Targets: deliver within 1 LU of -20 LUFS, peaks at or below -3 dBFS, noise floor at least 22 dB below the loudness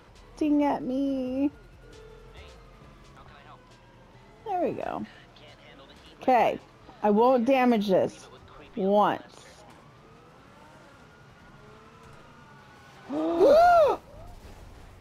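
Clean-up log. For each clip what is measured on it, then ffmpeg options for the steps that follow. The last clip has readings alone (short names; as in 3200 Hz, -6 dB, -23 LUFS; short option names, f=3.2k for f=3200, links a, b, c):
loudness -24.5 LUFS; peak -9.5 dBFS; loudness target -20.0 LUFS
-> -af "volume=4.5dB"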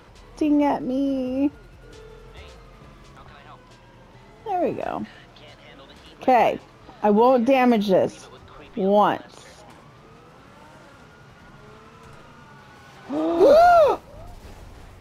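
loudness -20.0 LUFS; peak -5.0 dBFS; noise floor -49 dBFS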